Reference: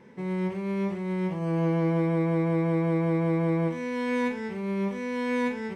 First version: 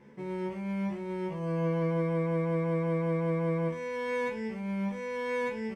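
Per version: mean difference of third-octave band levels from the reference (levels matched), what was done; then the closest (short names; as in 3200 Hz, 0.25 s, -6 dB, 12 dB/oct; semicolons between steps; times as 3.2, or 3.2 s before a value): 2.0 dB: low shelf 140 Hz +4 dB; notch 3900 Hz, Q 12; doubler 14 ms -2 dB; gain -6 dB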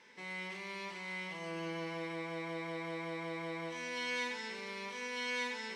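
9.5 dB: in parallel at +2 dB: limiter -28 dBFS, peak gain reduction 11 dB; on the sum: band-pass 4600 Hz, Q 1; FDN reverb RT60 2 s, low-frequency decay 1.55×, high-frequency decay 1×, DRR 4.5 dB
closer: first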